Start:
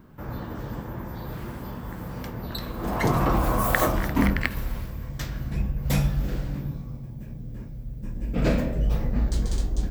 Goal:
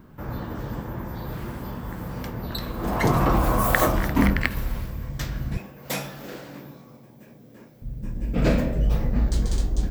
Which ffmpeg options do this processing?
-filter_complex "[0:a]asettb=1/sr,asplit=3[a][b][c];[a]atrim=end=5.574[d];[b]atrim=start=5.57:end=7.82,asetpts=PTS-STARTPTS,afade=t=in:d=0.004:c=qsin,afade=t=out:st=2.246:d=0.004:c=qsin,highpass=350[e];[c]atrim=start=7.816[f];[d][e]acrossfade=d=0.004:c1=hsin:c2=qsin[g];[g][f]acrossfade=d=0.004:c1=qsin:c2=hsin,volume=2dB"

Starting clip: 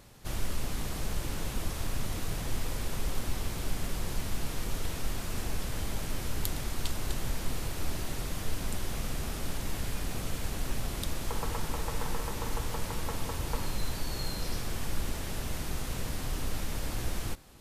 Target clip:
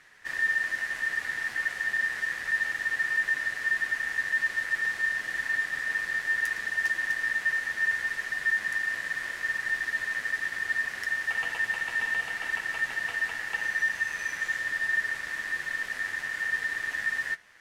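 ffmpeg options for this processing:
-af "adynamicsmooth=sensitivity=7.5:basefreq=7.8k,flanger=delay=9.2:depth=1.3:regen=46:speed=0.59:shape=triangular,aeval=exprs='0.0631*(abs(mod(val(0)/0.0631+3,4)-2)-1)':c=same,aeval=exprs='val(0)*sin(2*PI*1800*n/s)':c=same,volume=5.5dB"

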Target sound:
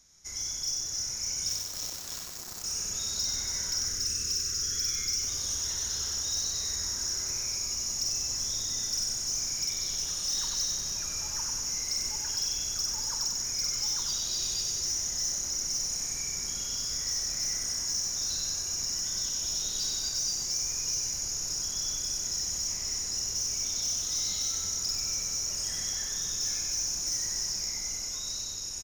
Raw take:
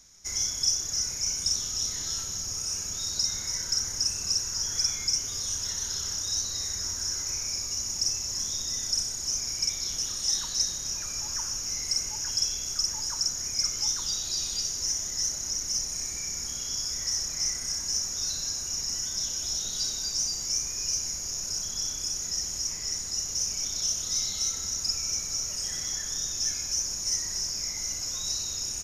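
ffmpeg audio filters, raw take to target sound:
-filter_complex "[0:a]dynaudnorm=f=370:g=7:m=5dB,asettb=1/sr,asplit=3[a][b][c];[a]atrim=end=1.494[d];[b]atrim=start=1.49:end=2.64,asetpts=PTS-STARTPTS,afade=t=in:d=0.004:c=qsin,afade=t=out:st=1.146:d=0.004:c=qsin,aeval=exprs='0.251*(cos(1*acos(clip(val(0)/0.251,-1,1)))-cos(1*PI/2))+0.0501*(cos(7*acos(clip(val(0)/0.251,-1,1)))-cos(7*PI/2))':c=same[e];[c]atrim=start=2.636[f];[d][e]acrossfade=d=0.004:c1=hsin:c2=qsin[g];[g][f]acrossfade=d=0.004:c1=qsin:c2=hsin,asoftclip=type=tanh:threshold=-20dB,asettb=1/sr,asplit=3[h][i][j];[h]atrim=end=3.854[k];[i]atrim=start=3.85:end=5.22,asetpts=PTS-STARTPTS,afade=t=in:d=0.004:c=qsin,afade=t=out:st=1.366:d=0.004:c=qsin,asuperstop=centerf=780:order=8:qfactor=1.2[l];[j]atrim=start=5.216[m];[k][l]acrossfade=d=0.004:c1=hsin:c2=qsin[n];[n][m]acrossfade=d=0.004:c1=qsin:c2=hsin,aecho=1:1:95|190|285|380|475|570|665:0.631|0.322|0.164|0.0837|0.0427|0.0218|0.0111,volume=-6dB"

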